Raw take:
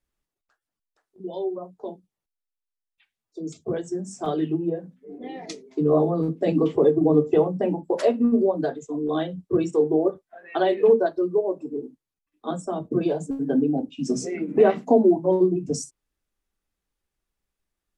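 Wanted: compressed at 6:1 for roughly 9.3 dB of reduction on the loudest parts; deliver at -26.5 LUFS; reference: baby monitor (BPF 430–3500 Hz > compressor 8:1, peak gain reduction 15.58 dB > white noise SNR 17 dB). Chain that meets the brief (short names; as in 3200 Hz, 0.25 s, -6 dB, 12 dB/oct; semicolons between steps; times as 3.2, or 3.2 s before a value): compressor 6:1, threshold -22 dBFS; BPF 430–3500 Hz; compressor 8:1, threshold -38 dBFS; white noise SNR 17 dB; gain +16.5 dB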